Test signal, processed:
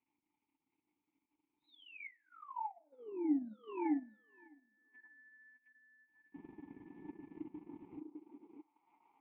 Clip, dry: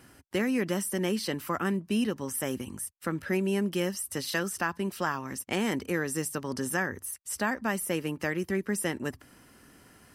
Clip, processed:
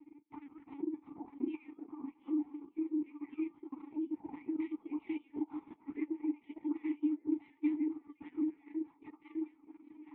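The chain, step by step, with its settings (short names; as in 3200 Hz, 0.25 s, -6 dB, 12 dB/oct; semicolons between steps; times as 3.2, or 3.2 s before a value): spectrum mirrored in octaves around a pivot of 1800 Hz; bell 430 Hz -3 dB 0.43 oct; requantised 12-bit, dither triangular; limiter -26 dBFS; compressor 2.5:1, threshold -38 dBFS; air absorption 320 m; LPC vocoder at 8 kHz pitch kept; vowel filter u; delay with a stepping band-pass 0.605 s, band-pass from 380 Hz, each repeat 1.4 oct, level 0 dB; two-slope reverb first 0.42 s, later 3.2 s, from -27 dB, DRR 14 dB; transient shaper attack +5 dB, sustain -9 dB; gain +6 dB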